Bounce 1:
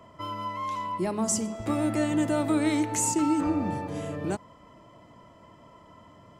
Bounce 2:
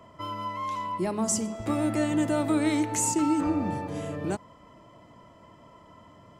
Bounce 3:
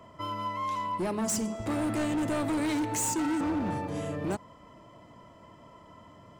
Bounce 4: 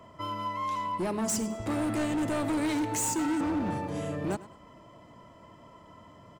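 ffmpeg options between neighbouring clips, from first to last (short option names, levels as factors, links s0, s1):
-af anull
-af "asoftclip=type=hard:threshold=0.0473"
-af "aecho=1:1:102|204:0.126|0.0352"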